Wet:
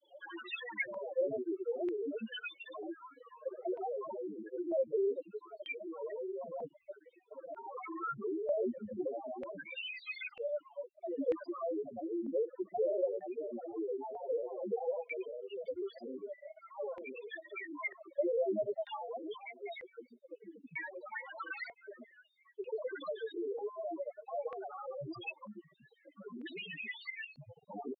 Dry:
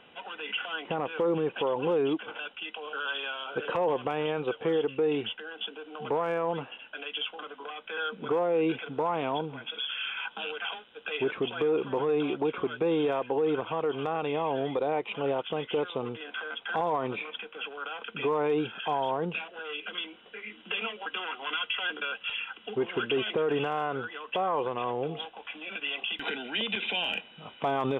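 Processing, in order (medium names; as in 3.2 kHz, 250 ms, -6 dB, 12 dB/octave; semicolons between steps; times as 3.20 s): compression 6:1, threshold -34 dBFS, peak gain reduction 10.5 dB; loudest bins only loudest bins 2; granulator 100 ms, pitch spread up and down by 7 st; LFO low-pass square 0.53 Hz 550–2300 Hz; trim +1.5 dB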